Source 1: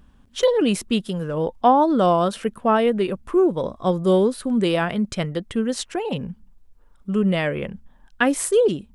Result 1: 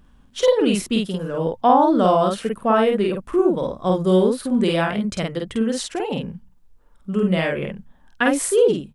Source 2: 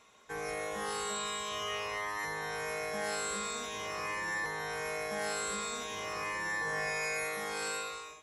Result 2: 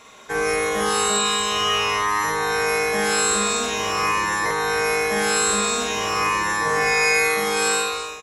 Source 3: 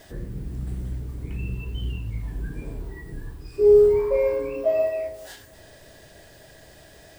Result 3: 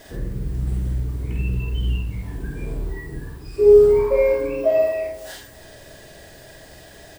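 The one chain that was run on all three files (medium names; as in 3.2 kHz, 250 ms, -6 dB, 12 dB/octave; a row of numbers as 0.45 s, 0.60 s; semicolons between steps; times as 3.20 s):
hum notches 50/100/150 Hz; doubling 49 ms -2 dB; normalise loudness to -20 LUFS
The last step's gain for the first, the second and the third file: -1.0 dB, +14.0 dB, +3.5 dB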